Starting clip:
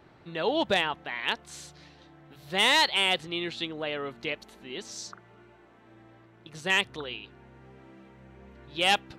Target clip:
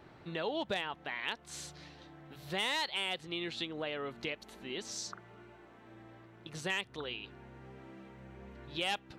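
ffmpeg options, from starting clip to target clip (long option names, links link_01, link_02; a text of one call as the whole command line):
ffmpeg -i in.wav -af "acompressor=threshold=-37dB:ratio=2.5" out.wav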